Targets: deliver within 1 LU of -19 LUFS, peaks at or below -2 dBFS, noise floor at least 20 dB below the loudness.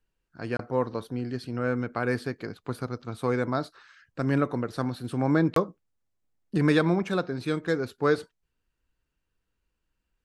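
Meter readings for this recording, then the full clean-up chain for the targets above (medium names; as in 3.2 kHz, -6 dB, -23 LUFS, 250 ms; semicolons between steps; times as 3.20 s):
dropouts 2; longest dropout 23 ms; loudness -28.5 LUFS; peak level -10.0 dBFS; loudness target -19.0 LUFS
-> interpolate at 0.57/5.54 s, 23 ms; trim +9.5 dB; peak limiter -2 dBFS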